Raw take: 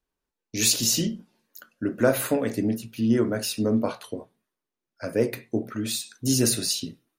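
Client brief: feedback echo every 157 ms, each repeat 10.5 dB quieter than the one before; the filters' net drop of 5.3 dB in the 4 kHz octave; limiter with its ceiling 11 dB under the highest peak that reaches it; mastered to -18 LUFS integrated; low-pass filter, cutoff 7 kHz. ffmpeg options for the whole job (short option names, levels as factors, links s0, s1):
-af "lowpass=7000,equalizer=f=4000:t=o:g=-6,alimiter=limit=0.119:level=0:latency=1,aecho=1:1:157|314|471:0.299|0.0896|0.0269,volume=3.76"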